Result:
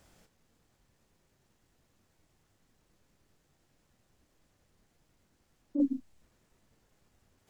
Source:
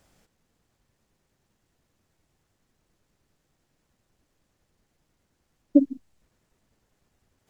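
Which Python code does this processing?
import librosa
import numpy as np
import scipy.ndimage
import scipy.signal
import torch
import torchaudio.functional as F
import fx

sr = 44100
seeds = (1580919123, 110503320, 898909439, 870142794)

y = fx.chorus_voices(x, sr, voices=2, hz=0.56, base_ms=26, depth_ms=4.6, mix_pct=25)
y = fx.over_compress(y, sr, threshold_db=-21.0, ratio=-0.5)
y = F.gain(torch.from_numpy(y), -2.0).numpy()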